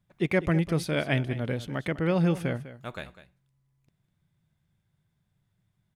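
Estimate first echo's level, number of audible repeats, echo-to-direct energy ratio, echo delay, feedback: -14.5 dB, 1, -14.5 dB, 0.2 s, no steady repeat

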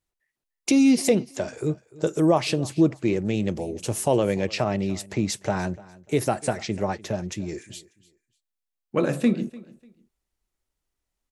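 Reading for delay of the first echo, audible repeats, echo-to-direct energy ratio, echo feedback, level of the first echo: 0.296 s, 2, -20.5 dB, 25%, -21.0 dB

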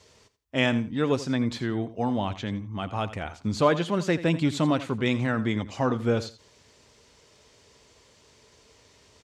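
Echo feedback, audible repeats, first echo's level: 19%, 2, -15.0 dB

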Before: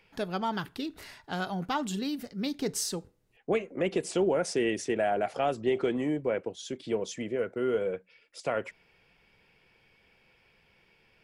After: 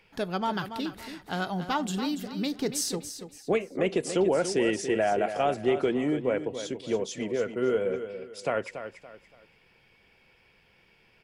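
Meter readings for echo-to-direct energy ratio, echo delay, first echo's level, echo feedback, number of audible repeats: -9.5 dB, 0.284 s, -10.0 dB, 31%, 3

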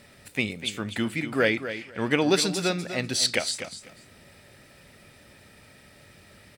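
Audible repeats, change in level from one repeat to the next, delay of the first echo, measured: 2, -15.0 dB, 0.248 s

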